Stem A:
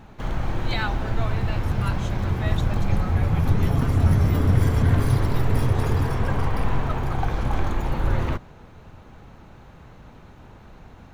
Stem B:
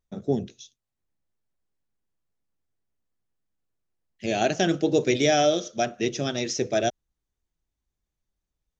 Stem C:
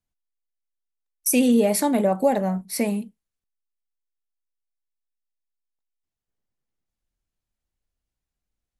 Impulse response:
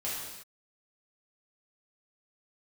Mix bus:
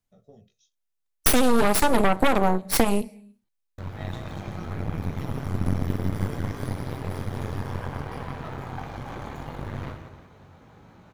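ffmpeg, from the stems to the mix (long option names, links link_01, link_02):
-filter_complex "[0:a]highpass=84,bandreject=frequency=2700:width=17,adelay=1550,volume=-2.5dB,asplit=3[link_01][link_02][link_03];[link_01]atrim=end=2.27,asetpts=PTS-STARTPTS,afade=type=out:start_time=2.266:duration=0.004:curve=hsin[link_04];[link_02]atrim=start=2.27:end=3.78,asetpts=PTS-STARTPTS,volume=0[link_05];[link_03]atrim=start=3.78,asetpts=PTS-STARTPTS,afade=type=in:duration=0.004:curve=hsin[link_06];[link_04][link_05][link_06]concat=n=3:v=0:a=1,asplit=3[link_07][link_08][link_09];[link_08]volume=-15dB[link_10];[link_09]volume=-18dB[link_11];[1:a]aecho=1:1:1.6:0.89,acompressor=threshold=-23dB:ratio=6,volume=-19dB[link_12];[2:a]volume=2.5dB,asplit=3[link_13][link_14][link_15];[link_14]volume=-23dB[link_16];[link_15]apad=whole_len=559493[link_17];[link_07][link_17]sidechaincompress=threshold=-32dB:ratio=8:attack=16:release=1430[link_18];[link_18][link_12]amix=inputs=2:normalize=0,flanger=delay=17:depth=4.9:speed=0.45,acompressor=threshold=-40dB:ratio=2.5,volume=0dB[link_19];[3:a]atrim=start_sample=2205[link_20];[link_10][link_16]amix=inputs=2:normalize=0[link_21];[link_21][link_20]afir=irnorm=-1:irlink=0[link_22];[link_11]aecho=0:1:174|348|522|696|870|1044|1218:1|0.48|0.23|0.111|0.0531|0.0255|0.0122[link_23];[link_13][link_19][link_22][link_23]amix=inputs=4:normalize=0,aeval=exprs='0.562*(cos(1*acos(clip(val(0)/0.562,-1,1)))-cos(1*PI/2))+0.282*(cos(6*acos(clip(val(0)/0.562,-1,1)))-cos(6*PI/2))':channel_layout=same,acompressor=threshold=-14dB:ratio=6"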